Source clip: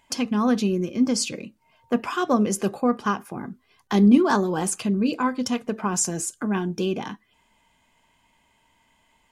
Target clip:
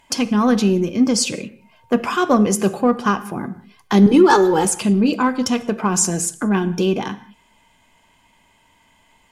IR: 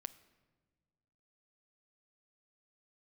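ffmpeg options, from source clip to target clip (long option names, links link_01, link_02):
-filter_complex "[0:a]asettb=1/sr,asplit=3[link_01][link_02][link_03];[link_01]atrim=end=4.064[link_04];[link_02]atrim=start=4.06:end=4.65,asetpts=PTS-STARTPTS,afade=type=in:duration=0.004:curve=qsin,afade=type=out:start_time=0.586:duration=0.004:curve=qsin,aecho=1:1:2.3:0.93,atrim=end_sample=26019[link_05];[link_03]atrim=start=4.646[link_06];[link_04][link_05]acrossfade=duration=0.004:curve1=hsin:curve2=qsin[link_07];[link_07][link_06]acrossfade=duration=0.004:curve1=qsin:curve2=hsin,asplit=2[link_08][link_09];[link_09]asoftclip=type=tanh:threshold=-24dB,volume=-11dB[link_10];[link_08][link_10]amix=inputs=2:normalize=0[link_11];[1:a]atrim=start_sample=2205,afade=type=out:start_time=0.18:duration=0.01,atrim=end_sample=8379,asetrate=29547,aresample=44100[link_12];[link_11][link_12]afir=irnorm=-1:irlink=0,volume=7dB"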